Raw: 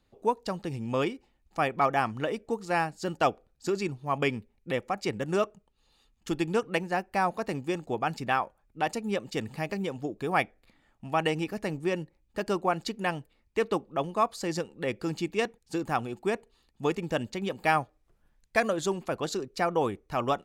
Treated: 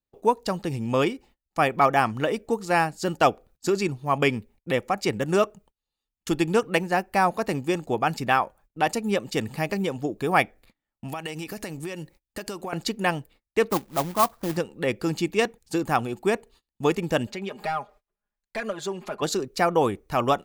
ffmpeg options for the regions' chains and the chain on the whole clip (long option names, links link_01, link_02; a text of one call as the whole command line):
ffmpeg -i in.wav -filter_complex "[0:a]asettb=1/sr,asplit=3[link_01][link_02][link_03];[link_01]atrim=end=11.084[link_04];[link_02]atrim=start=11.08:end=12.73,asetpts=PTS-STARTPTS,afade=type=in:duration=0.004:curve=qsin,afade=type=out:start_time=1.646:duration=0.004:curve=qsin,highshelf=frequency=2400:gain=9,acompressor=threshold=-35dB:ratio=8:attack=3.2:release=140:knee=1:detection=peak[link_05];[link_03]atrim=start=12.726[link_06];[link_04][link_05]acrossfade=duration=0.004:curve1=hsin:curve2=qsin[link_07];[link_07][link_06]acrossfade=duration=0.004:curve1=qsin:curve2=hsin,asettb=1/sr,asplit=3[link_08][link_09][link_10];[link_08]atrim=end=13.704[link_11];[link_09]atrim=start=13.7:end=14.57,asetpts=PTS-STARTPTS,afade=type=in:duration=0.004:curve=qsin,afade=type=out:start_time=0.866:duration=0.004:curve=qsin,lowpass=frequency=1300:width=0.5412,lowpass=frequency=1300:width=1.3066,equalizer=frequency=450:width=2:gain=-7.5,acrusher=bits=2:mode=log:mix=0:aa=0.000001[link_12];[link_10]atrim=start=14.566[link_13];[link_11][link_12]acrossfade=duration=0.004:curve1=hsin:curve2=qsin[link_14];[link_14][link_13]acrossfade=duration=0.004:curve1=qsin:curve2=hsin,asettb=1/sr,asplit=3[link_15][link_16][link_17];[link_15]atrim=end=17.274[link_18];[link_16]atrim=start=17.27:end=19.22,asetpts=PTS-STARTPTS,afade=type=in:duration=0.004:curve=qsin,afade=type=out:start_time=1.946:duration=0.004:curve=qsin,acompressor=threshold=-47dB:ratio=2:attack=3.2:release=140:knee=1:detection=peak,asplit=2[link_19][link_20];[link_20]highpass=frequency=720:poles=1,volume=12dB,asoftclip=type=tanh:threshold=-25dB[link_21];[link_19][link_21]amix=inputs=2:normalize=0,lowpass=frequency=2400:poles=1,volume=-6dB,aecho=1:1:4.9:0.82,atrim=end_sample=85995[link_22];[link_17]atrim=start=19.216[link_23];[link_18][link_22]acrossfade=duration=0.004:curve1=hsin:curve2=qsin[link_24];[link_24][link_23]acrossfade=duration=0.004:curve1=qsin:curve2=hsin,agate=range=-27dB:threshold=-56dB:ratio=16:detection=peak,highshelf=frequency=12000:gain=11,volume=5.5dB" out.wav